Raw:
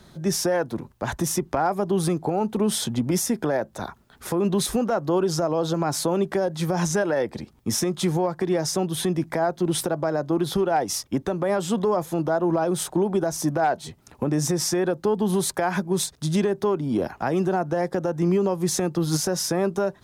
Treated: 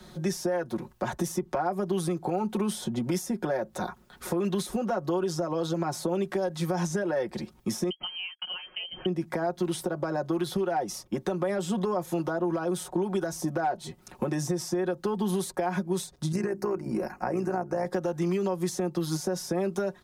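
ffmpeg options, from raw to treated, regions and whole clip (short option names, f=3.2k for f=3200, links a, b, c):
-filter_complex "[0:a]asettb=1/sr,asplit=3[a][b][c];[a]atrim=end=7.904[d];[b]atrim=start=7.9:end=9.06,asetpts=PTS-STARTPTS,afade=t=in:d=0.004:c=qsin,afade=t=out:st=1.156:d=0.004:c=qsin,agate=range=-37dB:threshold=-31dB:ratio=16:release=100:detection=peak,lowpass=f=2.8k:t=q:w=0.5098,lowpass=f=2.8k:t=q:w=0.6013,lowpass=f=2.8k:t=q:w=0.9,lowpass=f=2.8k:t=q:w=2.563,afreqshift=-3300[e];[c]atrim=start=9.056[f];[d][e]acrossfade=d=0.004:c1=hsin:c2=qsin[g];[g][f]acrossfade=d=0.004:c1=qsin:c2=hsin,asettb=1/sr,asplit=3[h][i][j];[h]atrim=end=16.324[k];[i]atrim=start=16.32:end=17.86,asetpts=PTS-STARTPTS,afade=t=in:d=0.004:c=qsin,afade=t=out:st=1.536:d=0.004:c=qsin,bandreject=f=50:t=h:w=6,bandreject=f=100:t=h:w=6,bandreject=f=150:t=h:w=6,bandreject=f=200:t=h:w=6,bandreject=f=250:t=h:w=6,bandreject=f=300:t=h:w=6,bandreject=f=350:t=h:w=6,tremolo=f=59:d=0.71,asuperstop=centerf=3400:order=4:qfactor=1.7[l];[j]atrim=start=17.856[m];[k][l]acrossfade=d=0.004:c1=hsin:c2=qsin[n];[n][m]acrossfade=d=0.004:c1=qsin:c2=hsin,equalizer=f=150:t=o:w=0.35:g=-4.5,aecho=1:1:5.5:0.7,acrossover=split=100|1000[o][p][q];[o]acompressor=threshold=-53dB:ratio=4[r];[p]acompressor=threshold=-27dB:ratio=4[s];[q]acompressor=threshold=-39dB:ratio=4[t];[r][s][t]amix=inputs=3:normalize=0"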